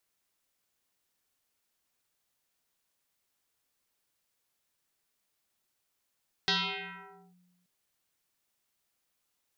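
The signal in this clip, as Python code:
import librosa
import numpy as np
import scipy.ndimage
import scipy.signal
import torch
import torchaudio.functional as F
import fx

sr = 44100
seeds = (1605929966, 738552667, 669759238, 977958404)

y = fx.fm2(sr, length_s=1.18, level_db=-23.0, carrier_hz=179.0, ratio=3.23, index=8.1, index_s=0.86, decay_s=1.38, shape='linear')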